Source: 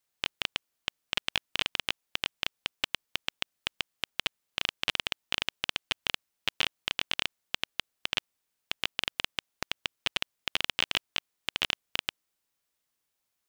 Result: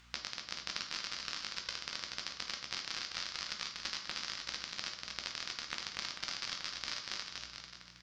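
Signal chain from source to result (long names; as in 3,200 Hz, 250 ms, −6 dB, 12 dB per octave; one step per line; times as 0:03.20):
low shelf with overshoot 530 Hz −9 dB, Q 1.5
change of speed 1.68×
upward compression, threshold −38 dBFS
mains hum 60 Hz, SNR 32 dB
downward compressor 3 to 1, threshold −34 dBFS, peak gain reduction 9.5 dB
high-frequency loss of the air 170 metres
bouncing-ball delay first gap 240 ms, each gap 0.85×, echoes 5
on a send at −3 dB: convolution reverb RT60 0.60 s, pre-delay 3 ms
on the sum: level +1.5 dB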